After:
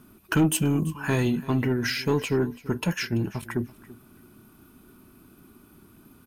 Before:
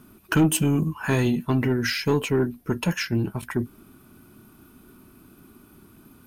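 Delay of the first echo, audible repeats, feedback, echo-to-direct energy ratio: 335 ms, 2, 19%, -19.5 dB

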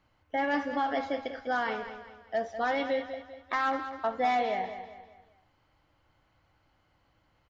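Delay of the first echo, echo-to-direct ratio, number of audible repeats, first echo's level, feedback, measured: 197 ms, -9.5 dB, 4, -10.5 dB, 40%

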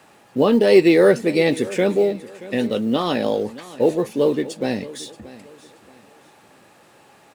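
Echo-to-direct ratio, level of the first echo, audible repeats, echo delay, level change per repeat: -17.5 dB, -18.0 dB, 2, 628 ms, -10.0 dB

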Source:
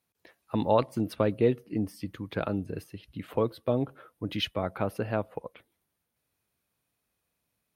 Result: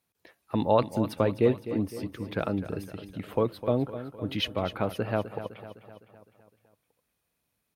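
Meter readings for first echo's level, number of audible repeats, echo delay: -12.5 dB, 5, 255 ms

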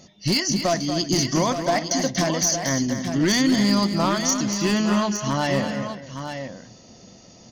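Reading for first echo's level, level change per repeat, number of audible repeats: -8.5 dB, no regular repeats, 4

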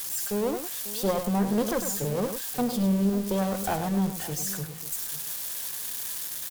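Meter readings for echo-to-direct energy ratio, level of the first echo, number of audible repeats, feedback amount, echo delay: -7.5 dB, -8.5 dB, 2, no regular repeats, 103 ms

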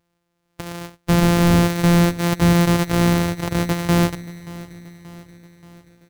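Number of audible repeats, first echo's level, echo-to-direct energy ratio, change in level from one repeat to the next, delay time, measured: 4, -18.5 dB, -17.0 dB, -5.5 dB, 580 ms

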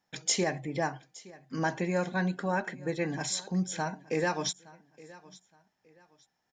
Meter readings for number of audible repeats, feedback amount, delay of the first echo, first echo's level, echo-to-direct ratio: 2, 30%, 868 ms, -21.0 dB, -20.5 dB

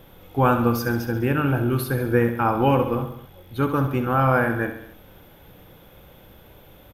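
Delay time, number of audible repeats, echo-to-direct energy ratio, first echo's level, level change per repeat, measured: 68 ms, 4, -8.0 dB, -9.5 dB, -4.5 dB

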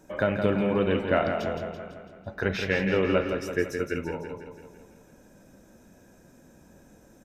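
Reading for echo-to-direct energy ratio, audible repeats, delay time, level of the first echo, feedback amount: -5.5 dB, 6, 167 ms, -7.0 dB, 55%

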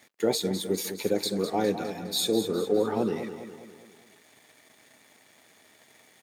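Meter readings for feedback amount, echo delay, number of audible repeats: 50%, 205 ms, 5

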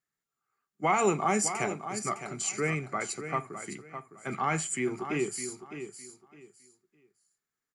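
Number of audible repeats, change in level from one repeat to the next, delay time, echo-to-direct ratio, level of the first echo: 2, -13.0 dB, 609 ms, -10.0 dB, -10.0 dB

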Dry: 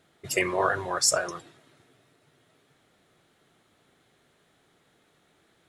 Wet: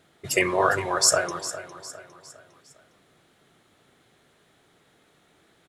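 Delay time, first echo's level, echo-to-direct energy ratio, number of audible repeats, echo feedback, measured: 406 ms, -14.0 dB, -13.0 dB, 3, 43%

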